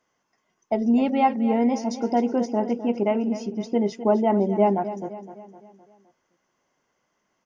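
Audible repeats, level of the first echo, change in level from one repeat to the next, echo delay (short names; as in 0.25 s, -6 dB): 4, -13.0 dB, -6.0 dB, 0.257 s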